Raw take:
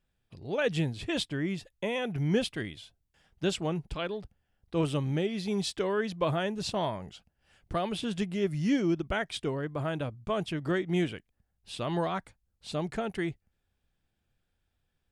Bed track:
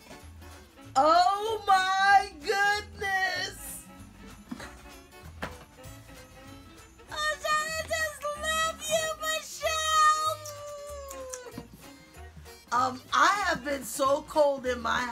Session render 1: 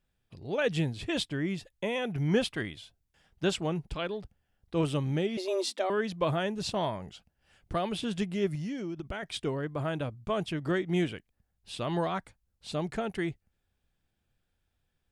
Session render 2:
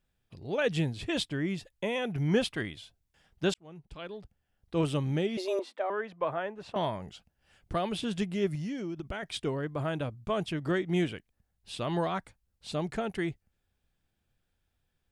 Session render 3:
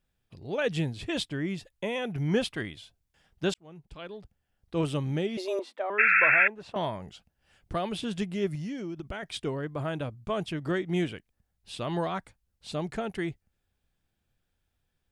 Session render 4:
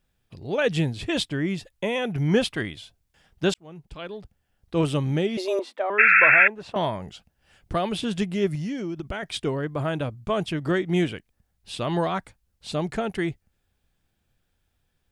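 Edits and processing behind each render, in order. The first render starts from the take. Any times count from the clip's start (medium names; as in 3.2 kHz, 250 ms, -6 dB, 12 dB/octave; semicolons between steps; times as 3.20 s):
2.27–3.57 s: dynamic bell 1.1 kHz, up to +5 dB, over -47 dBFS, Q 0.91; 5.37–5.90 s: frequency shift +190 Hz; 8.55–9.23 s: compression 10:1, threshold -32 dBFS
3.54–4.78 s: fade in linear; 5.59–6.76 s: three-band isolator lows -14 dB, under 430 Hz, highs -21 dB, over 2.2 kHz
5.98–6.48 s: painted sound noise 1.3–2.7 kHz -21 dBFS
trim +5.5 dB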